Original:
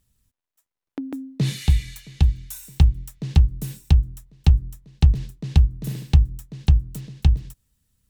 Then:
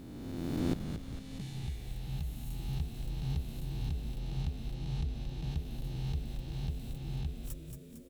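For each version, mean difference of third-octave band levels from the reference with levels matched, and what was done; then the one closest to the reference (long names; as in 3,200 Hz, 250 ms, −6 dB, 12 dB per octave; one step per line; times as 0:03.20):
13.5 dB: peak hold with a rise ahead of every peak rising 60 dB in 2.20 s
gate with flip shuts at −19 dBFS, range −25 dB
on a send: echo with shifted repeats 227 ms, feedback 57%, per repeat −100 Hz, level −6.5 dB
on the sum: level +1 dB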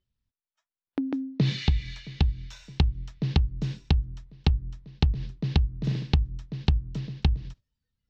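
5.0 dB: inverse Chebyshev low-pass filter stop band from 9,100 Hz, stop band 40 dB
noise reduction from a noise print of the clip's start 15 dB
downward compressor 6 to 1, threshold −21 dBFS, peak gain reduction 12 dB
level +2 dB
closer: second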